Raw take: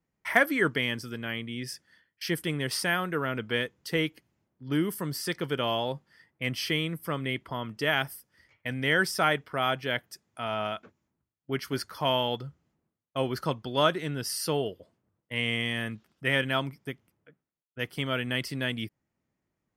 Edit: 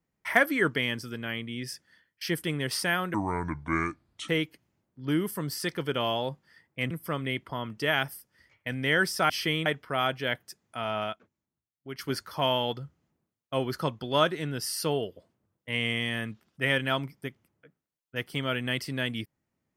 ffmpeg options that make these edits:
-filter_complex "[0:a]asplit=8[s0][s1][s2][s3][s4][s5][s6][s7];[s0]atrim=end=3.144[s8];[s1]atrim=start=3.14:end=3.92,asetpts=PTS-STARTPTS,asetrate=29988,aresample=44100,atrim=end_sample=50585,asetpts=PTS-STARTPTS[s9];[s2]atrim=start=3.916:end=6.542[s10];[s3]atrim=start=6.898:end=9.292[s11];[s4]atrim=start=6.538:end=6.902[s12];[s5]atrim=start=9.288:end=10.762[s13];[s6]atrim=start=10.758:end=11.622,asetpts=PTS-STARTPTS,volume=0.355[s14];[s7]atrim=start=11.618[s15];[s8][s9]acrossfade=d=0.004:c1=hsin:c2=hsin[s16];[s16][s10]acrossfade=d=0.004:c1=hsin:c2=hsin[s17];[s17][s11]acrossfade=d=0.004:c1=hsin:c2=hsin[s18];[s18][s12]acrossfade=d=0.004:c1=hsin:c2=hsin[s19];[s19][s13]acrossfade=d=0.004:c1=hsin:c2=hsin[s20];[s20][s14]acrossfade=d=0.004:c1=hsin:c2=hsin[s21];[s21][s15]acrossfade=d=0.004:c1=hsin:c2=hsin"

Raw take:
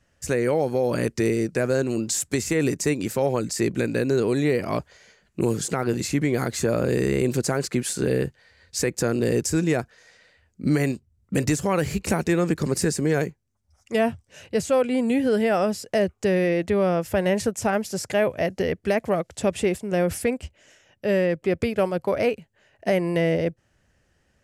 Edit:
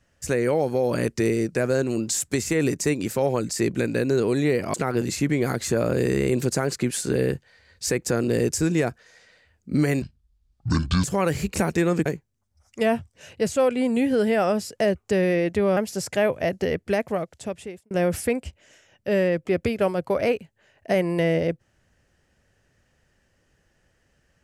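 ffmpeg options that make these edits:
-filter_complex "[0:a]asplit=7[s0][s1][s2][s3][s4][s5][s6];[s0]atrim=end=4.742[s7];[s1]atrim=start=5.658:end=10.944[s8];[s2]atrim=start=10.94:end=11.55,asetpts=PTS-STARTPTS,asetrate=26460,aresample=44100[s9];[s3]atrim=start=11.546:end=12.572[s10];[s4]atrim=start=13.188:end=16.902[s11];[s5]atrim=start=17.738:end=19.88,asetpts=PTS-STARTPTS,afade=t=out:st=1.082:d=1.06[s12];[s6]atrim=start=19.88,asetpts=PTS-STARTPTS,afade=t=in:d=0.004:c=hsin[s13];[s7][s8]acrossfade=d=0.004:c1=hsin:c2=hsin[s14];[s14][s9]acrossfade=d=0.004:c1=hsin:c2=hsin[s15];[s15][s10]acrossfade=d=0.004:c1=hsin:c2=hsin[s16];[s16][s11]acrossfade=d=0.004:c1=hsin:c2=hsin[s17];[s12][s13]concat=n=2:v=0:a=1[s18];[s17][s18]acrossfade=d=0.004:c1=hsin:c2=hsin"

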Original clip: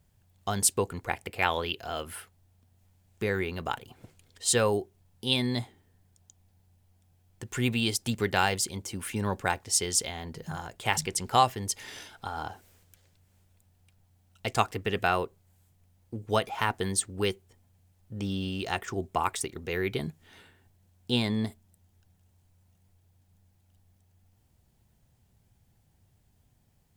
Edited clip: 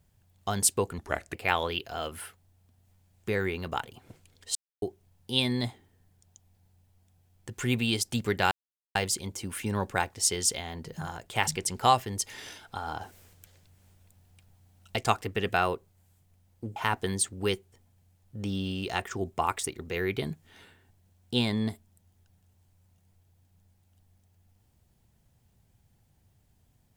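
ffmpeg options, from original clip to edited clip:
-filter_complex "[0:a]asplit=9[s0][s1][s2][s3][s4][s5][s6][s7][s8];[s0]atrim=end=0.984[s9];[s1]atrim=start=0.98:end=1.28,asetpts=PTS-STARTPTS,asetrate=36603,aresample=44100[s10];[s2]atrim=start=1.276:end=4.49,asetpts=PTS-STARTPTS,afade=t=out:st=3.21:d=0.004:c=hsin[s11];[s3]atrim=start=4.49:end=4.76,asetpts=PTS-STARTPTS,volume=0[s12];[s4]atrim=start=4.76:end=8.45,asetpts=PTS-STARTPTS,afade=t=in:d=0.004:c=hsin,afade=t=out:st=3.686:d=0.004:c=hsin,apad=pad_dur=0.44[s13];[s5]atrim=start=8.45:end=12.512,asetpts=PTS-STARTPTS,afade=t=in:d=0.004:c=hsin[s14];[s6]atrim=start=12.508:end=14.462,asetpts=PTS-STARTPTS,volume=1.68[s15];[s7]atrim=start=14.458:end=16.262[s16];[s8]atrim=start=16.528[s17];[s9][s10]acrossfade=d=0.004:c1=hsin:c2=hsin[s18];[s11][s12][s13][s14]concat=n=4:v=0:a=1[s19];[s18][s19]acrossfade=d=0.004:c1=hsin:c2=hsin[s20];[s20][s15]acrossfade=d=0.004:c1=hsin:c2=hsin[s21];[s21][s16]acrossfade=d=0.004:c1=hsin:c2=hsin[s22];[s22][s17]acrossfade=d=0.004:c1=hsin:c2=hsin"

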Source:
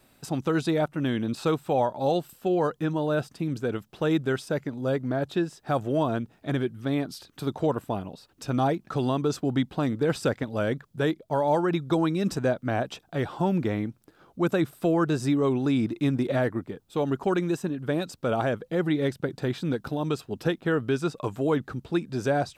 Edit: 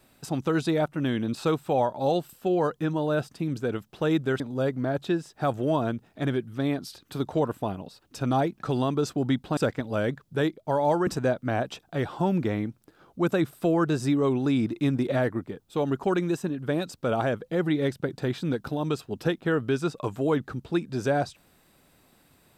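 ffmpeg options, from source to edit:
-filter_complex "[0:a]asplit=4[s0][s1][s2][s3];[s0]atrim=end=4.402[s4];[s1]atrim=start=4.668:end=9.842[s5];[s2]atrim=start=10.198:end=11.702[s6];[s3]atrim=start=12.268[s7];[s4][s5]acrossfade=d=0.004:c1=hsin:c2=hsin[s8];[s8][s6]acrossfade=d=0.004:c1=hsin:c2=hsin[s9];[s9][s7]acrossfade=d=0.004:c1=hsin:c2=hsin"

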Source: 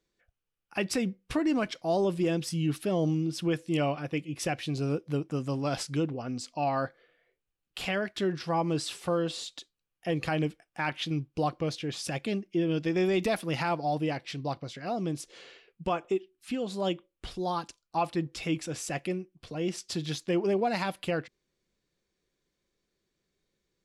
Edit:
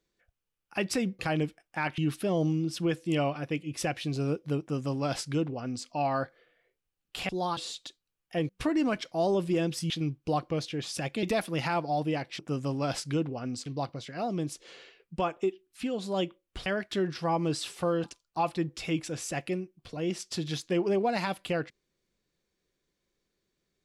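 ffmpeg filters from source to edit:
-filter_complex "[0:a]asplit=12[s0][s1][s2][s3][s4][s5][s6][s7][s8][s9][s10][s11];[s0]atrim=end=1.192[s12];[s1]atrim=start=10.208:end=11.002[s13];[s2]atrim=start=2.598:end=7.912[s14];[s3]atrim=start=17.338:end=17.622[s15];[s4]atrim=start=9.288:end=10.212[s16];[s5]atrim=start=1.188:end=2.602[s17];[s6]atrim=start=10.998:end=12.332[s18];[s7]atrim=start=13.178:end=14.342[s19];[s8]atrim=start=5.218:end=6.492[s20];[s9]atrim=start=14.338:end=17.342[s21];[s10]atrim=start=7.908:end=9.292[s22];[s11]atrim=start=17.618[s23];[s12][s13]acrossfade=d=0.004:c1=hsin:c2=hsin[s24];[s24][s14]acrossfade=d=0.004:c1=hsin:c2=hsin[s25];[s25][s15]acrossfade=d=0.004:c1=hsin:c2=hsin[s26];[s26][s16]acrossfade=d=0.004:c1=hsin:c2=hsin[s27];[s27][s17]acrossfade=d=0.004:c1=hsin:c2=hsin[s28];[s28][s18]acrossfade=d=0.004:c1=hsin:c2=hsin[s29];[s29][s19]acrossfade=d=0.004:c1=hsin:c2=hsin[s30];[s30][s20]acrossfade=d=0.004:c1=hsin:c2=hsin[s31];[s31][s21]acrossfade=d=0.004:c1=hsin:c2=hsin[s32];[s32][s22]acrossfade=d=0.004:c1=hsin:c2=hsin[s33];[s33][s23]acrossfade=d=0.004:c1=hsin:c2=hsin"

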